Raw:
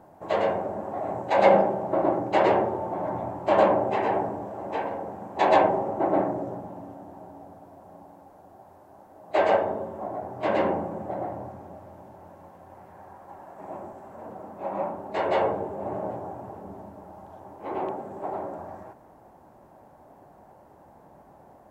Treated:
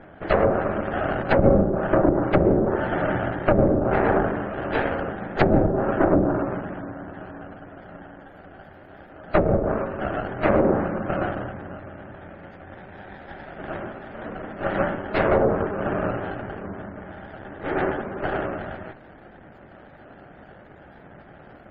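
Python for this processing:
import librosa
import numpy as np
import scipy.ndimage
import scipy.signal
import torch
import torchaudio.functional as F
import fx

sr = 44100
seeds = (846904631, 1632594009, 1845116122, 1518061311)

y = fx.lower_of_two(x, sr, delay_ms=0.44)
y = fx.spec_gate(y, sr, threshold_db=-30, keep='strong')
y = fx.env_lowpass_down(y, sr, base_hz=400.0, full_db=-19.5)
y = F.gain(torch.from_numpy(y), 8.0).numpy()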